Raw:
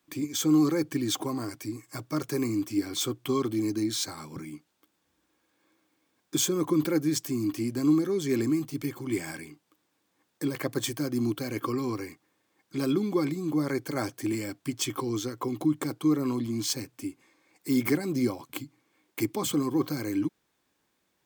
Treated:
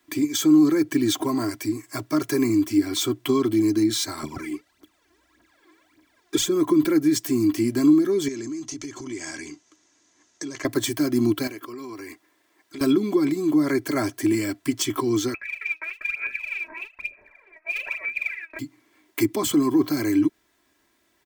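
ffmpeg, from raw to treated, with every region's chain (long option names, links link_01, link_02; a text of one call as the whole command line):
ffmpeg -i in.wav -filter_complex "[0:a]asettb=1/sr,asplit=3[link_01][link_02][link_03];[link_01]atrim=end=4.234[link_04];[link_02]atrim=start=4.23:end=6.46,asetpts=PTS-STARTPTS,afade=type=in:duration=0.004:curve=qsin,afade=type=out:start_time=2.226:duration=0.004:curve=qsin,highshelf=frequency=7700:gain=-8,aphaser=in_gain=1:out_gain=1:delay=3:decay=0.75:speed=1.7:type=triangular[link_05];[link_03]atrim=start=6.456[link_06];[link_04][link_05]acrossfade=duration=0.004:curve1=hsin:curve2=qsin[link_07];[link_07][link_06]acrossfade=duration=0.004:curve1=qsin:curve2=hsin,asettb=1/sr,asplit=3[link_08][link_09][link_10];[link_08]atrim=end=8.284[link_11];[link_09]atrim=start=8.28:end=10.65,asetpts=PTS-STARTPTS,afade=type=in:duration=0.004:curve=qsin,afade=type=out:start_time=2.366:duration=0.004:curve=qsin,acompressor=threshold=-41dB:ratio=4:attack=3.2:release=140:knee=1:detection=peak,lowpass=frequency=6400:width_type=q:width=6.5[link_12];[link_10]atrim=start=10.646[link_13];[link_11][link_12]acrossfade=duration=0.004:curve1=hsin:curve2=qsin[link_14];[link_14][link_13]acrossfade=duration=0.004:curve1=qsin:curve2=hsin,asettb=1/sr,asplit=3[link_15][link_16][link_17];[link_15]atrim=end=11.474[link_18];[link_16]atrim=start=11.47:end=12.81,asetpts=PTS-STARTPTS,afade=type=in:duration=0.004:curve=qsin,afade=type=out:start_time=1.336:duration=0.004:curve=qsin,bass=frequency=250:gain=-8,treble=frequency=4000:gain=0,acompressor=threshold=-41dB:ratio=12:attack=3.2:release=140:knee=1:detection=peak[link_19];[link_17]atrim=start=12.806[link_20];[link_18][link_19]acrossfade=duration=0.004:curve1=hsin:curve2=qsin[link_21];[link_21][link_20]acrossfade=duration=0.004:curve1=qsin:curve2=hsin,asettb=1/sr,asplit=3[link_22][link_23][link_24];[link_22]atrim=end=15.344[link_25];[link_23]atrim=start=15.34:end=18.59,asetpts=PTS-STARTPTS,afade=type=in:duration=0.004:curve=qsin,afade=type=out:start_time=3.246:duration=0.004:curve=qsin,lowpass=frequency=2300:width_type=q:width=0.5098,lowpass=frequency=2300:width_type=q:width=0.6013,lowpass=frequency=2300:width_type=q:width=0.9,lowpass=frequency=2300:width_type=q:width=2.563,afreqshift=-2700,acompressor=threshold=-51dB:ratio=2:attack=3.2:release=140:knee=1:detection=peak,aphaser=in_gain=1:out_gain=1:delay=3.2:decay=0.78:speed=1.1:type=sinusoidal[link_26];[link_24]atrim=start=18.586[link_27];[link_25][link_26]acrossfade=duration=0.004:curve1=hsin:curve2=qsin[link_28];[link_28][link_27]acrossfade=duration=0.004:curve1=qsin:curve2=hsin,equalizer=frequency=1900:width_type=o:width=0.29:gain=5.5,aecho=1:1:3:0.63,acrossover=split=290[link_29][link_30];[link_30]acompressor=threshold=-28dB:ratio=6[link_31];[link_29][link_31]amix=inputs=2:normalize=0,volume=6dB" out.wav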